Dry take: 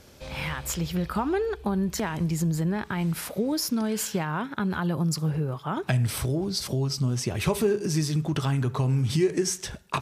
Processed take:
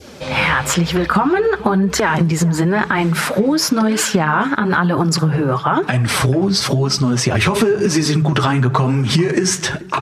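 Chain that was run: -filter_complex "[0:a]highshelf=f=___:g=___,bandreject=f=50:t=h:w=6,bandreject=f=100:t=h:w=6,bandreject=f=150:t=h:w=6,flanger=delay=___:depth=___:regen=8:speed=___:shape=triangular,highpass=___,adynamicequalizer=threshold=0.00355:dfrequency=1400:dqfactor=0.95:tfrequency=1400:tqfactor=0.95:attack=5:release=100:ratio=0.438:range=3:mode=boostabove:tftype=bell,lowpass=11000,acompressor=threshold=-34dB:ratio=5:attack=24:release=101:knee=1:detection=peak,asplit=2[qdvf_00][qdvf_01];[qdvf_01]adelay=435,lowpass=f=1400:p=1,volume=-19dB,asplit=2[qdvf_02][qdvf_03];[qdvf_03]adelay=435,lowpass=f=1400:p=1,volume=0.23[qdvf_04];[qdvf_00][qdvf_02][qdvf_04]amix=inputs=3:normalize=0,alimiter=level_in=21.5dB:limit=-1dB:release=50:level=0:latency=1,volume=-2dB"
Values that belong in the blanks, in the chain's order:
5300, -6.5, 2.3, 8.8, 1, 87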